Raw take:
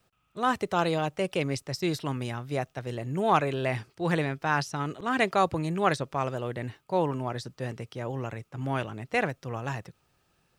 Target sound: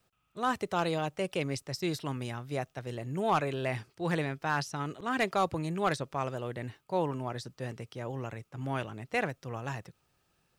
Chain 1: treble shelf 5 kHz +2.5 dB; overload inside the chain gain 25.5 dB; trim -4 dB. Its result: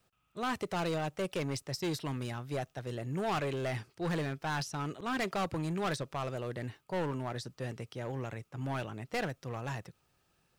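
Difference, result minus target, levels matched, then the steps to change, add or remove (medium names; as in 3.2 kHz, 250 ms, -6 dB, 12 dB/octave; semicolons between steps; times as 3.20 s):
overload inside the chain: distortion +14 dB
change: overload inside the chain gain 14.5 dB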